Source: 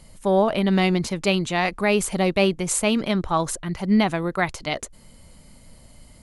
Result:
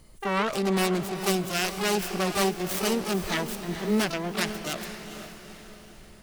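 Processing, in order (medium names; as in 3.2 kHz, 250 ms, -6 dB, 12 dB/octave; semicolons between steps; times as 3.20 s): self-modulated delay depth 0.53 ms; echo that smears into a reverb 464 ms, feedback 48%, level -9.5 dB; harmony voices +12 st -4 dB; trim -7 dB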